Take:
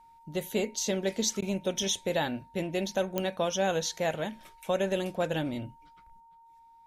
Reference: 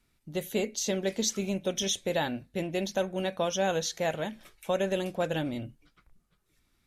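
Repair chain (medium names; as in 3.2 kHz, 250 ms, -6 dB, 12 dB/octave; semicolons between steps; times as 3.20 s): de-click; band-stop 920 Hz, Q 30; interpolate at 1.41 s, 11 ms; trim 0 dB, from 6.20 s +6 dB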